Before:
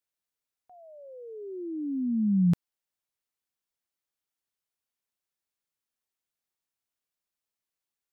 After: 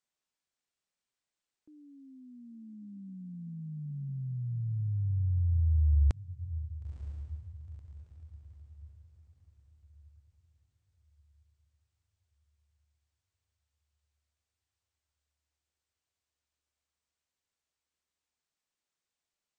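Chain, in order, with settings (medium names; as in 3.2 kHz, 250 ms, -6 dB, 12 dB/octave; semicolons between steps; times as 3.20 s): wide varispeed 0.415×; echo that smears into a reverb 968 ms, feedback 42%, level -13 dB; trim -2.5 dB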